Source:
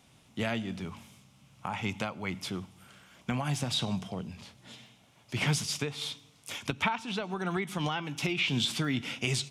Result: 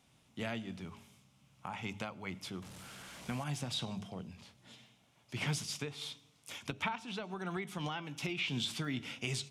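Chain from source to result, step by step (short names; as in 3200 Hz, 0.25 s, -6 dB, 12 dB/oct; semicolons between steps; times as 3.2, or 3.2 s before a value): 2.62–3.44 delta modulation 64 kbps, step -37.5 dBFS; de-hum 102.7 Hz, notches 7; gain -7 dB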